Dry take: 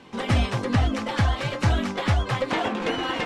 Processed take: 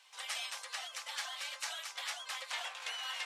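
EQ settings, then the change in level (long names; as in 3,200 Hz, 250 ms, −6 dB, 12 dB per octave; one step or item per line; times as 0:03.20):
inverse Chebyshev high-pass filter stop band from 300 Hz, stop band 40 dB
first difference
0.0 dB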